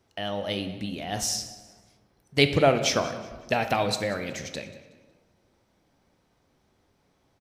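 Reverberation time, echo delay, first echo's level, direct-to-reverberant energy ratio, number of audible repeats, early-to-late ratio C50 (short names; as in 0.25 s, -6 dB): 1.4 s, 0.185 s, -18.0 dB, 8.0 dB, 2, 9.5 dB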